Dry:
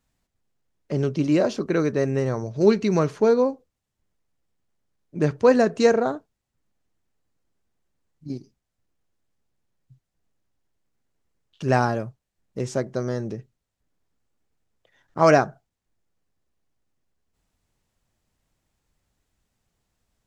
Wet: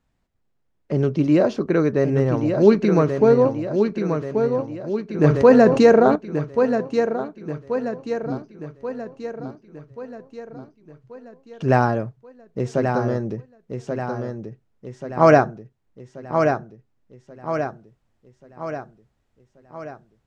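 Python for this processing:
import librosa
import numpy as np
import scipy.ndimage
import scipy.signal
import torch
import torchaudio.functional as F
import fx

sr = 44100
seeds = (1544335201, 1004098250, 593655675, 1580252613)

y = fx.lowpass(x, sr, hz=2100.0, slope=6)
y = fx.echo_feedback(y, sr, ms=1133, feedback_pct=53, wet_db=-6.0)
y = fx.env_flatten(y, sr, amount_pct=50, at=(5.24, 6.16))
y = y * 10.0 ** (3.5 / 20.0)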